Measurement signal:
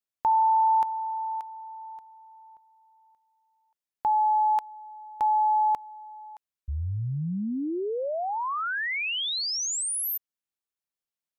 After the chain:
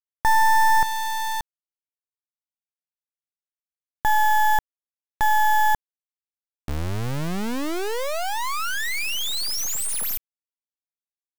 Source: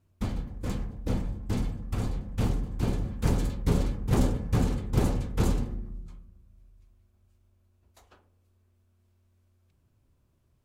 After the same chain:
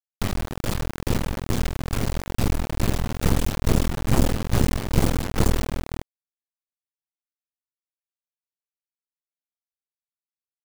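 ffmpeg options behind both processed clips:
-af "acrusher=bits=3:dc=4:mix=0:aa=0.000001,volume=8dB"

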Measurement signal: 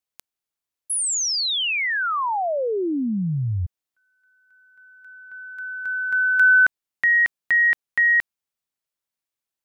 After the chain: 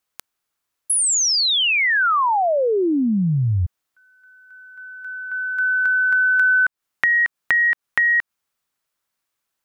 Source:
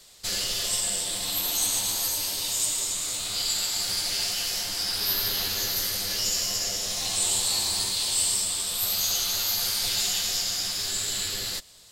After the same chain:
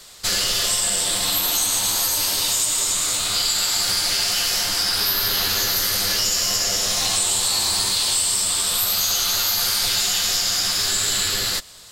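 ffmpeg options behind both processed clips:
-af "equalizer=f=1.3k:t=o:w=1:g=5.5,acompressor=threshold=-25dB:ratio=5:attack=13:release=156:knee=1:detection=rms,volume=8dB"

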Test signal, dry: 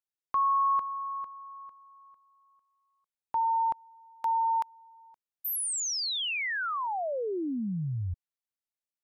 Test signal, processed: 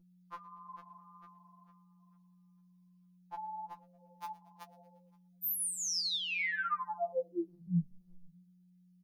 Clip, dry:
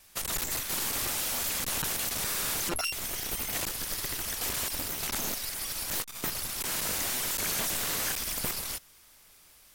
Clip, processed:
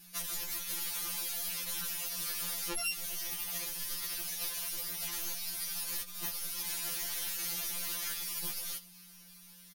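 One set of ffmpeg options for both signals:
-filter_complex "[0:a]highshelf=f=2.1k:g=10,acompressor=threshold=-26dB:ratio=6:attack=15:release=633:knee=1:detection=rms,equalizer=f=7.7k:w=6.4:g=-12,asplit=2[a][b];[b]asplit=4[c][d][e][f];[c]adelay=116,afreqshift=-94,volume=-21dB[g];[d]adelay=232,afreqshift=-188,volume=-26dB[h];[e]adelay=348,afreqshift=-282,volume=-31.1dB[i];[f]adelay=464,afreqshift=-376,volume=-36.1dB[j];[g][h][i][j]amix=inputs=4:normalize=0[k];[a][k]amix=inputs=2:normalize=0,flanger=delay=6.7:depth=7.5:regen=39:speed=1.5:shape=triangular,aeval=exprs='val(0)+0.00141*(sin(2*PI*60*n/s)+sin(2*PI*2*60*n/s)/2+sin(2*PI*3*60*n/s)/3+sin(2*PI*4*60*n/s)/4+sin(2*PI*5*60*n/s)/5)':c=same,afftfilt=real='re*2.83*eq(mod(b,8),0)':imag='im*2.83*eq(mod(b,8),0)':win_size=2048:overlap=0.75"

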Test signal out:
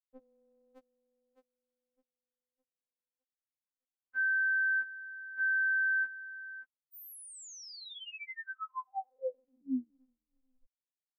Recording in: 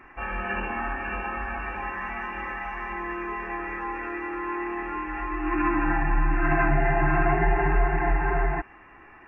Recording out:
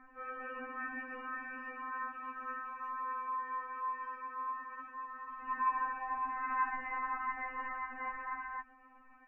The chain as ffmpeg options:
-af "highshelf=f=2.1k:g=-10.5,afftfilt=real='re*3.46*eq(mod(b,12),0)':imag='im*3.46*eq(mod(b,12),0)':win_size=2048:overlap=0.75,volume=-7dB"

